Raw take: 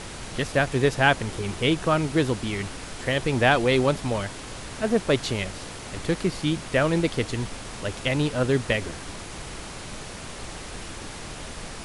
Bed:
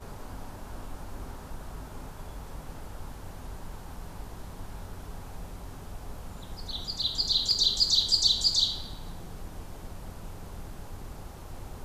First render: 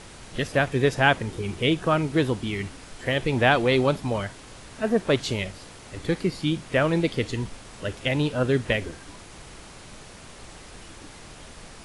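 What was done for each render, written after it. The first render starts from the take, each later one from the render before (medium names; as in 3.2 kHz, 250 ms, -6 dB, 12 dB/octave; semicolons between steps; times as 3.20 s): noise print and reduce 7 dB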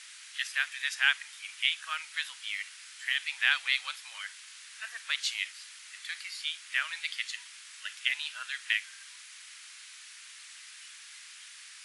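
inverse Chebyshev high-pass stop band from 370 Hz, stop band 70 dB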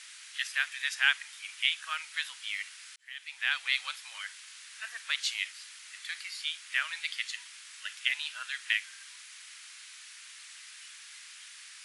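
2.96–3.80 s: fade in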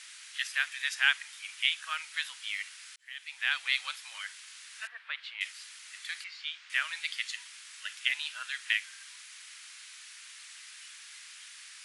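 4.87–5.41 s: distance through air 430 m; 6.24–6.70 s: distance through air 160 m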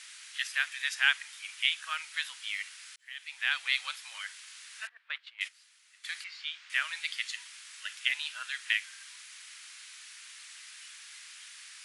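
4.89–6.04 s: gate -42 dBFS, range -14 dB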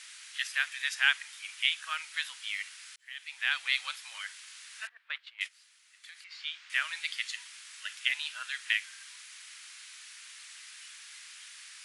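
5.46–6.31 s: compression 2.5:1, threshold -51 dBFS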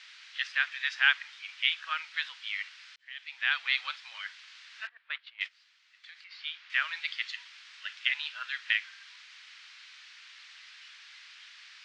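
low-pass 4.8 kHz 24 dB/octave; dynamic bell 1.3 kHz, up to +3 dB, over -40 dBFS, Q 1.2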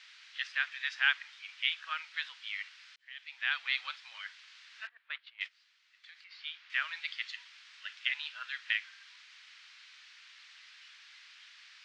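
trim -4 dB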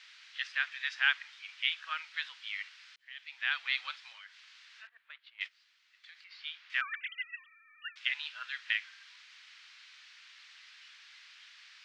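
4.12–5.34 s: compression 2:1, threshold -53 dBFS; 6.81–7.96 s: formants replaced by sine waves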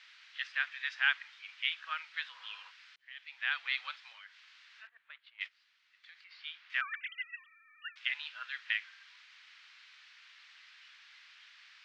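2.35–2.68 s: spectral replace 470–2400 Hz before; treble shelf 5.5 kHz -11 dB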